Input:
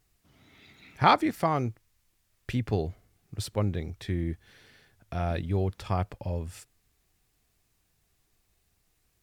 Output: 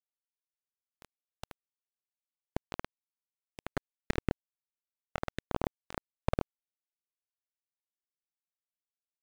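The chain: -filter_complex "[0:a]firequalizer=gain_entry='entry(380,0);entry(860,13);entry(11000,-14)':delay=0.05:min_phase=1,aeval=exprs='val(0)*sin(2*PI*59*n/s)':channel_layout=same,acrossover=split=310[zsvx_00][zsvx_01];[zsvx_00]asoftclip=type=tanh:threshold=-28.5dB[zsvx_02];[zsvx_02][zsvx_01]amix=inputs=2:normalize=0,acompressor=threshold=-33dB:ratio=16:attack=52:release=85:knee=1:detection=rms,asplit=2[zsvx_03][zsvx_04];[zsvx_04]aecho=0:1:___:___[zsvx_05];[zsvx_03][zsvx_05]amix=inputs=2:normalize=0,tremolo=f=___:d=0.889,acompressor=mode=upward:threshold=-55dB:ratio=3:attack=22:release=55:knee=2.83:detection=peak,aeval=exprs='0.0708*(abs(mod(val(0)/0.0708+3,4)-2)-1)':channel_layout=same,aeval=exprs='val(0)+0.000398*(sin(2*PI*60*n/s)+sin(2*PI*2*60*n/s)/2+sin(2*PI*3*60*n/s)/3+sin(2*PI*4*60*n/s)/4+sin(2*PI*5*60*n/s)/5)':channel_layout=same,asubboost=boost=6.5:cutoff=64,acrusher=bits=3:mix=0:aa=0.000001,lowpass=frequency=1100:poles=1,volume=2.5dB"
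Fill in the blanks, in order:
489, 0.335, 39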